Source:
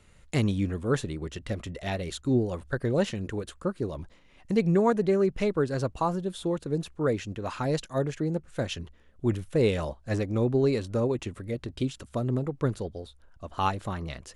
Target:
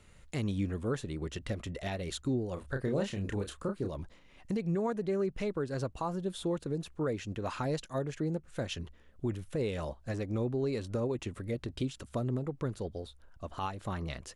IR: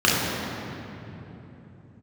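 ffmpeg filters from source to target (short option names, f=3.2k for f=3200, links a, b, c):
-filter_complex "[0:a]asplit=2[a][b];[b]acompressor=threshold=-34dB:ratio=6,volume=-3dB[c];[a][c]amix=inputs=2:normalize=0,alimiter=limit=-18.5dB:level=0:latency=1:release=248,asplit=3[d][e][f];[d]afade=t=out:st=2.56:d=0.02[g];[e]asplit=2[h][i];[i]adelay=30,volume=-5.5dB[j];[h][j]amix=inputs=2:normalize=0,afade=t=in:st=2.56:d=0.02,afade=t=out:st=3.87:d=0.02[k];[f]afade=t=in:st=3.87:d=0.02[l];[g][k][l]amix=inputs=3:normalize=0,volume=-5.5dB"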